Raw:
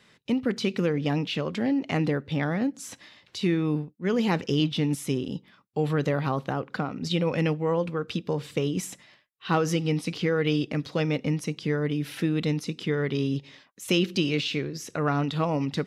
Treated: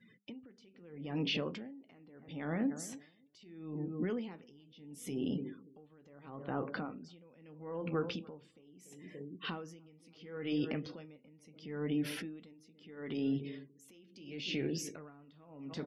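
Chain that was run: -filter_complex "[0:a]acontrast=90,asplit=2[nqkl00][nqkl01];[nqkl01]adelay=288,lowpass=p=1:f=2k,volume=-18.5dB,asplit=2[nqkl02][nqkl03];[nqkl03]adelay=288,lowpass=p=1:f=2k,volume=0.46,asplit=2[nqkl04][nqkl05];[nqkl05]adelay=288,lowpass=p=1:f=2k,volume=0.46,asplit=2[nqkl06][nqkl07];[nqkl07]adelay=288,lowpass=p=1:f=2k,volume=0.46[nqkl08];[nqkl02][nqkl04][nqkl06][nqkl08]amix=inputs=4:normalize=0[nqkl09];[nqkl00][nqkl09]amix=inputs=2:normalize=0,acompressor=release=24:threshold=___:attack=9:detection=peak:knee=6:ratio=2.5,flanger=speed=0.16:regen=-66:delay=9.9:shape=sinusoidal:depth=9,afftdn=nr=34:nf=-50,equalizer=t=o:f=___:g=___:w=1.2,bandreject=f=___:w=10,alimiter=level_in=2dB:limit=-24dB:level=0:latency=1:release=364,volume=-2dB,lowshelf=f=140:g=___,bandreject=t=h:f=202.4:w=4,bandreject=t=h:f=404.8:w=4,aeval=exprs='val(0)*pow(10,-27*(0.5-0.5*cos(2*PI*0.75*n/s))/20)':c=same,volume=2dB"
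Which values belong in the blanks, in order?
-32dB, 270, 4.5, 3.9k, -6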